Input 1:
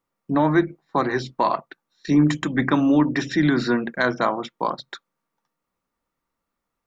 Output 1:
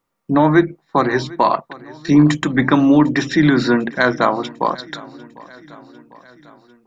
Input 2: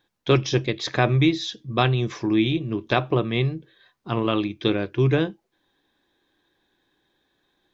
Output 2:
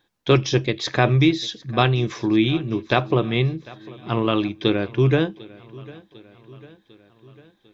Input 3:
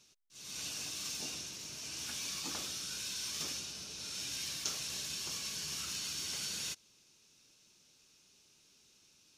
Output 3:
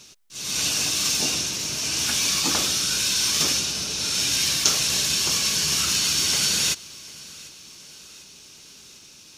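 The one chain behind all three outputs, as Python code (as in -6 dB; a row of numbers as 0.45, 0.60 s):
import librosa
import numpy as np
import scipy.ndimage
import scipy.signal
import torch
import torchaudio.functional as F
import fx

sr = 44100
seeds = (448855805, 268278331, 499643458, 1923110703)

y = fx.echo_feedback(x, sr, ms=749, feedback_pct=58, wet_db=-21.5)
y = y * 10.0 ** (-1.5 / 20.0) / np.max(np.abs(y))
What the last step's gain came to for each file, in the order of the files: +5.5, +2.0, +17.5 dB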